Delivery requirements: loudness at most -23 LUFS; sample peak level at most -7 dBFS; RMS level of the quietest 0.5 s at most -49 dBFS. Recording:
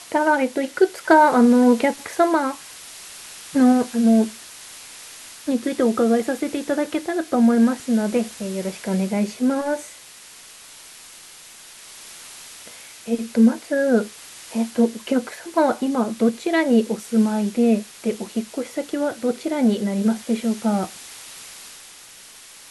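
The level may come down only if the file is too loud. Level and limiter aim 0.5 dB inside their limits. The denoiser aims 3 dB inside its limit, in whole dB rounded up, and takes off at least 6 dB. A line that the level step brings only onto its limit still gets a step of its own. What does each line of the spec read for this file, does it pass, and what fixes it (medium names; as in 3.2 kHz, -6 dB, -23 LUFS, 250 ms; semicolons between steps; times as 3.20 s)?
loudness -20.5 LUFS: fail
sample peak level -2.5 dBFS: fail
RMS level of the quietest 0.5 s -44 dBFS: fail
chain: noise reduction 6 dB, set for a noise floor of -44 dBFS; trim -3 dB; peak limiter -7.5 dBFS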